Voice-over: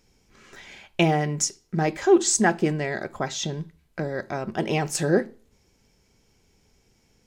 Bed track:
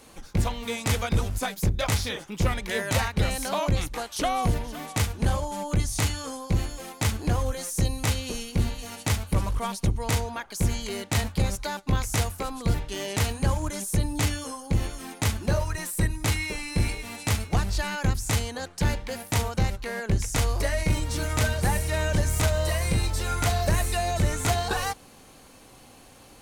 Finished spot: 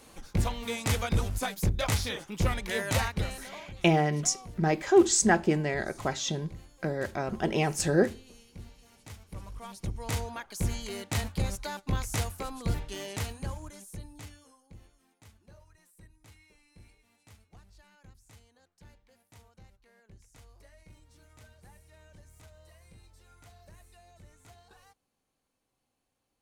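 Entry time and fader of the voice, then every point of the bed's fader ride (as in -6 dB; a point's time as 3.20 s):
2.85 s, -2.5 dB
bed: 3.09 s -3 dB
3.67 s -21.5 dB
9.14 s -21.5 dB
10.22 s -5.5 dB
12.91 s -5.5 dB
15.09 s -31 dB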